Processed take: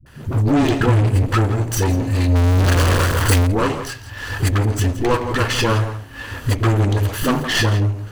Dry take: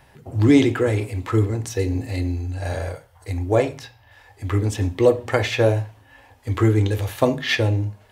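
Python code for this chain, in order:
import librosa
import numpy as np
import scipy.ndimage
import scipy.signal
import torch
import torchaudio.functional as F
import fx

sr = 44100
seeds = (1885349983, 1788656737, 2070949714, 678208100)

p1 = fx.lower_of_two(x, sr, delay_ms=0.66)
p2 = fx.recorder_agc(p1, sr, target_db=-15.0, rise_db_per_s=28.0, max_gain_db=30)
p3 = p2 + 10.0 ** (-14.5 / 20.0) * np.pad(p2, (int(167 * sr / 1000.0), 0))[:len(p2)]
p4 = np.clip(p3, -10.0 ** (-18.0 / 20.0), 10.0 ** (-18.0 / 20.0))
p5 = p3 + F.gain(torch.from_numpy(p4), -5.5).numpy()
p6 = fx.peak_eq(p5, sr, hz=140.0, db=12.5, octaves=1.8, at=(0.79, 1.26))
p7 = fx.power_curve(p6, sr, exponent=0.35, at=(2.29, 3.41))
p8 = 10.0 ** (-15.0 / 20.0) * np.tanh(p7 / 10.0 ** (-15.0 / 20.0))
p9 = fx.dispersion(p8, sr, late='highs', ms=62.0, hz=350.0)
y = F.gain(torch.from_numpy(p9), 3.0).numpy()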